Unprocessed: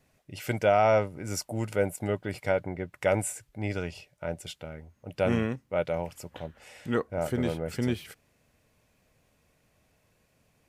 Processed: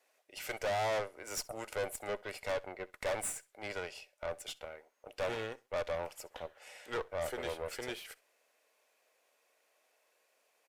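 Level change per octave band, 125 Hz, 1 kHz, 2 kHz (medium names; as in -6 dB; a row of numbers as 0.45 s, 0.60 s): -18.5 dB, -8.5 dB, -5.5 dB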